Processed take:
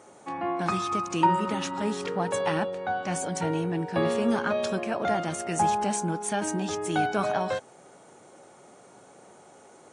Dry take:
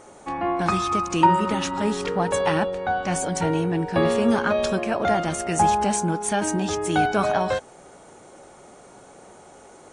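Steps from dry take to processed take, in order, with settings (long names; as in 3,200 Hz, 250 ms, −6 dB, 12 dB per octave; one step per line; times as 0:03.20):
high-pass filter 100 Hz 24 dB per octave
level −5 dB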